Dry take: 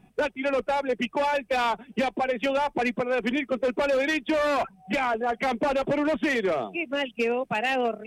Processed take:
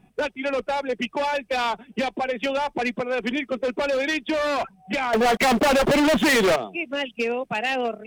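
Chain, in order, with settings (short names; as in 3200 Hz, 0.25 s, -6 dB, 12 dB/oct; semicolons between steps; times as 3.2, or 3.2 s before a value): dynamic EQ 4600 Hz, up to +5 dB, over -45 dBFS, Q 0.98; 5.13–6.56 sample leveller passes 5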